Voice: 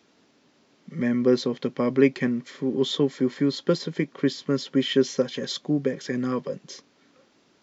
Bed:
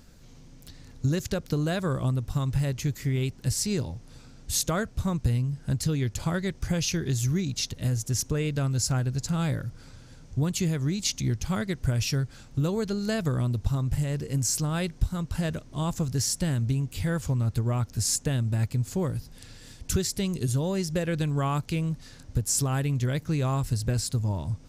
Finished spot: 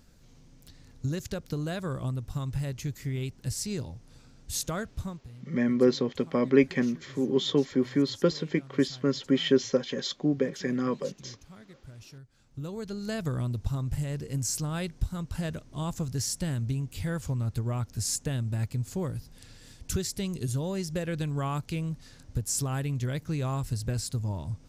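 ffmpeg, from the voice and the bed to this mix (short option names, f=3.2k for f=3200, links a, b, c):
-filter_complex "[0:a]adelay=4550,volume=-2dB[a];[1:a]volume=12.5dB,afade=t=out:st=5:d=0.21:silence=0.149624,afade=t=in:st=12.29:d=0.97:silence=0.125893[b];[a][b]amix=inputs=2:normalize=0"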